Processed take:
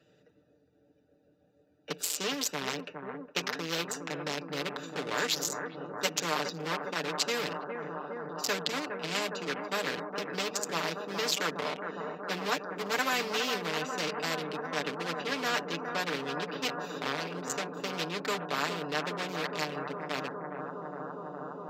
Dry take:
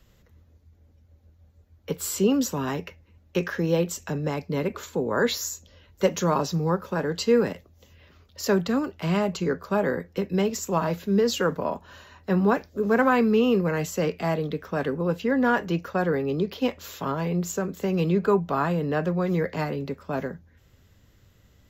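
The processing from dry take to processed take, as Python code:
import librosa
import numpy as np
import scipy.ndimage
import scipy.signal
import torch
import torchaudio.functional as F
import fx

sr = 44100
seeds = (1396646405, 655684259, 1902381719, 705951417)

y = fx.wiener(x, sr, points=41)
y = scipy.signal.sosfilt(scipy.signal.butter(2, 320.0, 'highpass', fs=sr, output='sos'), y)
y = fx.peak_eq(y, sr, hz=4200.0, db=13.0, octaves=2.9)
y = y + 0.7 * np.pad(y, (int(6.7 * sr / 1000.0), 0))[:len(y)]
y = fx.echo_bbd(y, sr, ms=411, stages=4096, feedback_pct=84, wet_db=-11.5)
y = fx.spectral_comp(y, sr, ratio=2.0)
y = F.gain(torch.from_numpy(y), -9.0).numpy()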